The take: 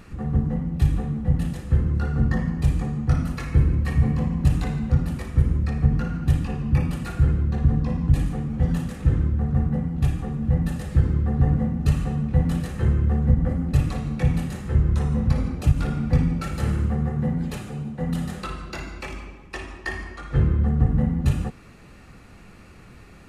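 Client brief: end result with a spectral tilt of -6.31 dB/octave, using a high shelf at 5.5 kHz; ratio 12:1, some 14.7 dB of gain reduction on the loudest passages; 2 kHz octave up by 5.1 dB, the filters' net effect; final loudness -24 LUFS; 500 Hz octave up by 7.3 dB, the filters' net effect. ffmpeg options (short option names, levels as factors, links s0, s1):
-af "equalizer=f=500:t=o:g=8,equalizer=f=2000:t=o:g=6.5,highshelf=f=5500:g=-7.5,acompressor=threshold=0.0447:ratio=12,volume=2.66"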